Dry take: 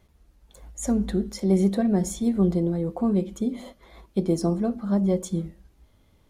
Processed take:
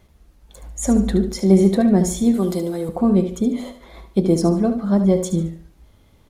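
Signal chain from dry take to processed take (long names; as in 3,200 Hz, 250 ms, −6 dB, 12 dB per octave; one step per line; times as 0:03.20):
0:02.34–0:02.89: RIAA equalisation recording
on a send: repeating echo 73 ms, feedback 33%, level −10 dB
on the sum: level +6.5 dB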